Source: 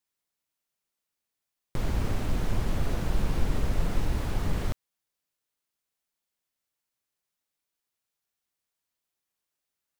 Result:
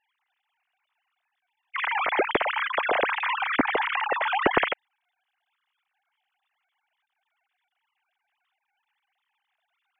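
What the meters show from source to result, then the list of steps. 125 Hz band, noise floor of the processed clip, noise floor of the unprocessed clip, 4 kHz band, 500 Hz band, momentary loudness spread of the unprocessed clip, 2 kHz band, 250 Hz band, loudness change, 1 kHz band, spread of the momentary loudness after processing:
−18.5 dB, −82 dBFS, below −85 dBFS, +10.5 dB, +10.0 dB, 5 LU, +18.0 dB, +1.5 dB, +7.0 dB, +16.0 dB, 5 LU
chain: three sine waves on the formant tracks
dynamic equaliser 2,100 Hz, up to +5 dB, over −41 dBFS, Q 2.7
level −2 dB

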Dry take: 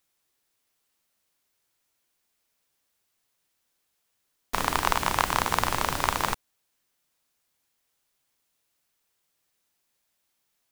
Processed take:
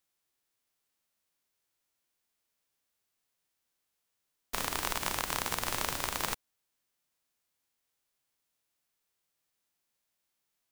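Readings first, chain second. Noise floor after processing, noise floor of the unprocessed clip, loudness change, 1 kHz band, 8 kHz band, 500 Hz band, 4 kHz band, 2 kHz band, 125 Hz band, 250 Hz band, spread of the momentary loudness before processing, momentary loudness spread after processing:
−83 dBFS, −76 dBFS, −7.0 dB, −11.0 dB, −2.5 dB, −8.0 dB, −4.5 dB, −7.5 dB, −9.5 dB, −8.0 dB, 6 LU, 4 LU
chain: spectral envelope flattened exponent 0.6
brickwall limiter −4.5 dBFS, peak gain reduction 5.5 dB
level −6.5 dB

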